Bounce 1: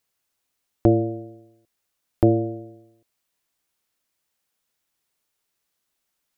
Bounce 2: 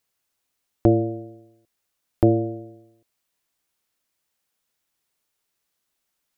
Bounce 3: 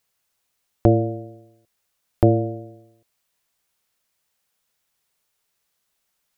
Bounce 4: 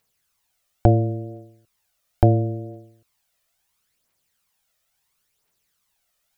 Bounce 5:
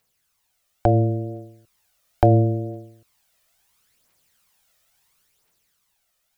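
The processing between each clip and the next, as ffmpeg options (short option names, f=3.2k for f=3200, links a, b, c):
-af anull
-af "equalizer=f=300:w=3.3:g=-7,volume=3.5dB"
-af "aphaser=in_gain=1:out_gain=1:delay=1.7:decay=0.53:speed=0.73:type=triangular"
-filter_complex "[0:a]acrossover=split=440[a][b];[a]alimiter=limit=-15dB:level=0:latency=1[c];[c][b]amix=inputs=2:normalize=0,dynaudnorm=f=200:g=11:m=6dB,volume=1dB"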